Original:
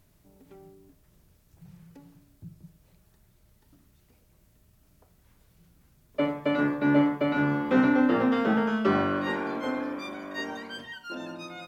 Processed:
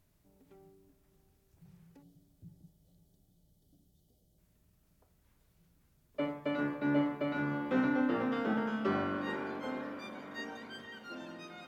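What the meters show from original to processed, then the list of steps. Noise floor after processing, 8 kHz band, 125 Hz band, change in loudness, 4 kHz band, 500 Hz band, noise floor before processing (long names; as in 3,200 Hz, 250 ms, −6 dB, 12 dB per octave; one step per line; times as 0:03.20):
−71 dBFS, can't be measured, −8.5 dB, −8.5 dB, −8.5 dB, −8.5 dB, −63 dBFS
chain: gain on a spectral selection 0:02.03–0:04.38, 790–2,900 Hz −19 dB
on a send: feedback delay with all-pass diffusion 525 ms, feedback 68%, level −14.5 dB
on the sum: level −8.5 dB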